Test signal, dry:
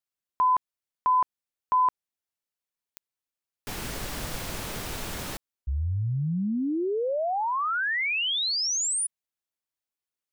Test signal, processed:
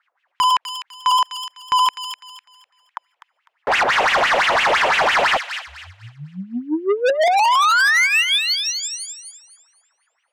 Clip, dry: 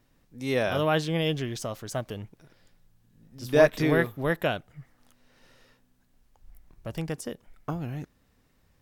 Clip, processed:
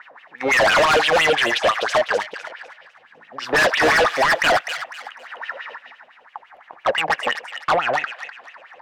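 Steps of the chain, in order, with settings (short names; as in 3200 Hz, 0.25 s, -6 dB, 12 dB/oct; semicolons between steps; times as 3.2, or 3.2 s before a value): band shelf 1200 Hz +8.5 dB; wah 5.9 Hz 500–3000 Hz, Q 6.6; overdrive pedal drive 35 dB, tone 2400 Hz, clips at -10 dBFS; sine folder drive 7 dB, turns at -10 dBFS; on a send: thin delay 0.251 s, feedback 30%, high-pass 2000 Hz, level -6 dB; on the sum: gain -3.5 dB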